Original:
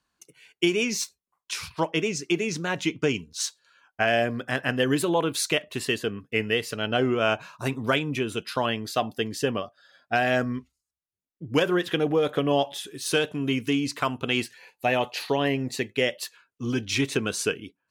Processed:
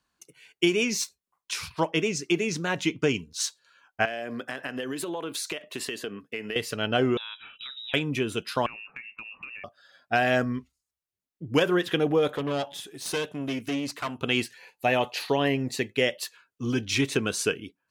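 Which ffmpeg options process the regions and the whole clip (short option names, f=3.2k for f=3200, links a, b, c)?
-filter_complex "[0:a]asettb=1/sr,asplit=3[a][b][c];[a]atrim=end=4.054[d];[b]atrim=start=4.05:end=6.56,asetpts=PTS-STARTPTS,afade=t=in:d=0.004:c=qsin,afade=t=out:st=2.506:d=0.004:c=qsin,highpass=220,acompressor=threshold=-28dB:ratio=12:attack=3.2:release=140:knee=1:detection=peak[e];[c]atrim=start=6.556[f];[d][e]acrossfade=d=0.004:c1=hsin:c2=qsin[g];[g][f]acrossfade=d=0.004:c1=qsin:c2=hsin,asettb=1/sr,asplit=3[h][i][j];[h]atrim=end=7.174[k];[i]atrim=start=7.17:end=7.94,asetpts=PTS-STARTPTS,afade=t=in:d=0.004:c=qsin,afade=t=out:st=0.766:d=0.004:c=qsin,bandreject=f=1.1k:w=6.7,lowpass=f=3.4k:t=q:w=0.5098,lowpass=f=3.4k:t=q:w=0.6013,lowpass=f=3.4k:t=q:w=0.9,lowpass=f=3.4k:t=q:w=2.563,afreqshift=-4000,acompressor=threshold=-37dB:ratio=5:attack=3.2:release=140:knee=1:detection=peak[l];[j]atrim=start=7.936[m];[k][l]acrossfade=d=0.004:c1=hsin:c2=qsin[n];[n][m]acrossfade=d=0.004:c1=qsin:c2=hsin,asettb=1/sr,asplit=3[o][p][q];[o]atrim=end=8.664[r];[p]atrim=start=8.66:end=9.64,asetpts=PTS-STARTPTS,afade=t=in:d=0.004:c=qsin,afade=t=out:st=0.976:d=0.004:c=qsin,lowpass=f=2.5k:t=q:w=0.5098,lowpass=f=2.5k:t=q:w=0.6013,lowpass=f=2.5k:t=q:w=0.9,lowpass=f=2.5k:t=q:w=2.563,afreqshift=-2900,acompressor=threshold=-37dB:ratio=10:attack=3.2:release=140:knee=1:detection=peak[s];[q]atrim=start=9.636[t];[r][s]acrossfade=d=0.004:c1=hsin:c2=qsin[u];[u][t]acrossfade=d=0.004:c1=qsin:c2=hsin,asettb=1/sr,asplit=3[v][w][x];[v]atrim=end=12.364[y];[w]atrim=start=12.36:end=14.21,asetpts=PTS-STARTPTS,afade=t=in:d=0.004:c=qsin,afade=t=out:st=1.846:d=0.004:c=qsin,aeval=exprs='(tanh(14.1*val(0)+0.65)-tanh(0.65))/14.1':c=same,highpass=100[z];[x]atrim=start=14.206[aa];[y][z]acrossfade=d=0.004:c1=hsin:c2=qsin[ab];[ab][aa]acrossfade=d=0.004:c1=qsin:c2=hsin"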